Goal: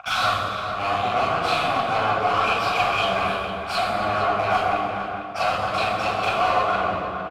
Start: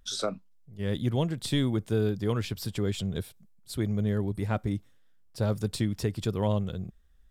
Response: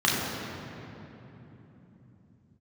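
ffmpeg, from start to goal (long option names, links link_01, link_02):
-filter_complex "[0:a]aeval=exprs='if(lt(val(0),0),0.251*val(0),val(0))':channel_layout=same,highpass=59,equalizer=frequency=1400:width_type=o:width=0.95:gain=14,acompressor=threshold=-42dB:ratio=10,asplit=3[link_01][link_02][link_03];[link_01]bandpass=frequency=730:width_type=q:width=8,volume=0dB[link_04];[link_02]bandpass=frequency=1090:width_type=q:width=8,volume=-6dB[link_05];[link_03]bandpass=frequency=2440:width_type=q:width=8,volume=-9dB[link_06];[link_04][link_05][link_06]amix=inputs=3:normalize=0,asplit=2[link_07][link_08];[link_08]highpass=frequency=720:poles=1,volume=25dB,asoftclip=type=tanh:threshold=-41.5dB[link_09];[link_07][link_09]amix=inputs=2:normalize=0,lowpass=frequency=1100:poles=1,volume=-6dB,crystalizer=i=8:c=0,aeval=exprs='0.01*(cos(1*acos(clip(val(0)/0.01,-1,1)))-cos(1*PI/2))+0.00316*(cos(2*acos(clip(val(0)/0.01,-1,1)))-cos(2*PI/2))':channel_layout=same,asplit=2[link_10][link_11];[link_11]adelay=454.8,volume=-8dB,highshelf=frequency=4000:gain=-10.2[link_12];[link_10][link_12]amix=inputs=2:normalize=0[link_13];[1:a]atrim=start_sample=2205,afade=type=out:start_time=0.39:duration=0.01,atrim=end_sample=17640,asetrate=31752,aresample=44100[link_14];[link_13][link_14]afir=irnorm=-1:irlink=0,volume=9dB"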